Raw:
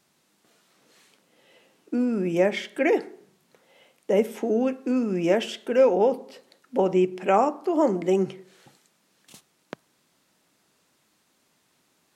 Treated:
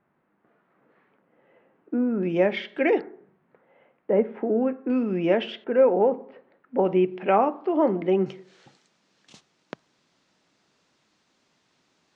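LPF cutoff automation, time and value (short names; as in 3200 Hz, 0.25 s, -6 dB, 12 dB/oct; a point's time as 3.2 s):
LPF 24 dB/oct
1800 Hz
from 2.23 s 3900 Hz
from 3.01 s 1900 Hz
from 4.9 s 3500 Hz
from 5.64 s 2000 Hz
from 6.85 s 3200 Hz
from 8.26 s 6400 Hz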